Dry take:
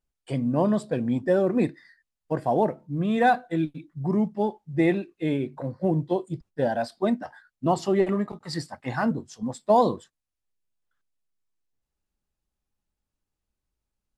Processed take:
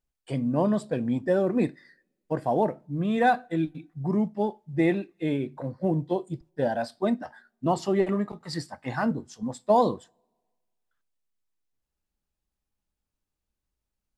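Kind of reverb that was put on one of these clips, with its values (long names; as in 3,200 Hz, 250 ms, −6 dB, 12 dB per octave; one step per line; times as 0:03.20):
coupled-rooms reverb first 0.27 s, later 1.5 s, from −27 dB, DRR 19 dB
level −1.5 dB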